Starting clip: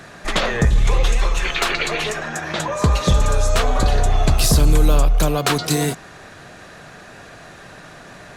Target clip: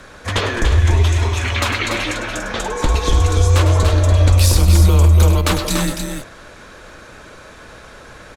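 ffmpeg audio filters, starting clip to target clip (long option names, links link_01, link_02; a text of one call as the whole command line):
ffmpeg -i in.wav -af "aecho=1:1:102|288.6:0.316|0.501,afreqshift=-120" out.wav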